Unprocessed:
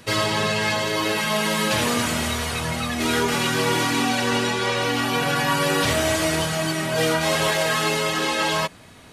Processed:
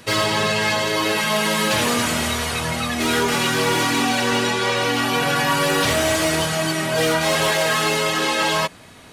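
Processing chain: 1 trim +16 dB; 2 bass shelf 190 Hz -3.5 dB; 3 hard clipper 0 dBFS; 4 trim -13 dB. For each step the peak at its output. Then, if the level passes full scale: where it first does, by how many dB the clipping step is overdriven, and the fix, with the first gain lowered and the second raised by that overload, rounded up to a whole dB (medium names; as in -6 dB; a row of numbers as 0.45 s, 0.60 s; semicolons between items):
+8.0 dBFS, +7.5 dBFS, 0.0 dBFS, -13.0 dBFS; step 1, 7.5 dB; step 1 +8 dB, step 4 -5 dB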